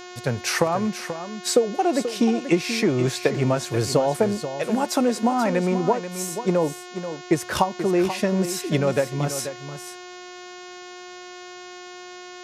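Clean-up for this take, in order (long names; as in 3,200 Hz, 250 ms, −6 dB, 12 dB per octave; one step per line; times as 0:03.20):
hum removal 360.2 Hz, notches 20
echo removal 484 ms −10.5 dB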